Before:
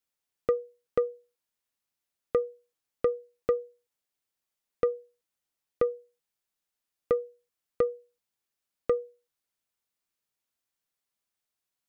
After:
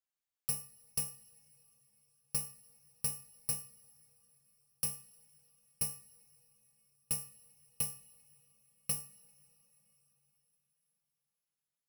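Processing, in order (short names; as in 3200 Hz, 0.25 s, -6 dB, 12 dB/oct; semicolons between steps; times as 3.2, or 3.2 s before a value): FFT order left unsorted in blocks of 128 samples; two-slope reverb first 0.56 s, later 4.6 s, from -16 dB, DRR 13 dB; gain -9 dB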